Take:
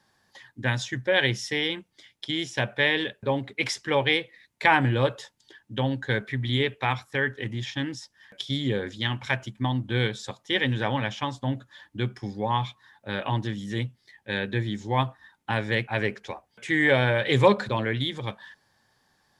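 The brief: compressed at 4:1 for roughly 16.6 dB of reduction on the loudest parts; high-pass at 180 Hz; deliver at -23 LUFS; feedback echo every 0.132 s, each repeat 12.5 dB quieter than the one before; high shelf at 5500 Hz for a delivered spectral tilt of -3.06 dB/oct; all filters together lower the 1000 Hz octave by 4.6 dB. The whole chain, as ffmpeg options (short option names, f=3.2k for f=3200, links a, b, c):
-af "highpass=180,equalizer=f=1k:t=o:g=-5.5,highshelf=f=5.5k:g=-4.5,acompressor=threshold=-36dB:ratio=4,aecho=1:1:132|264|396:0.237|0.0569|0.0137,volume=16dB"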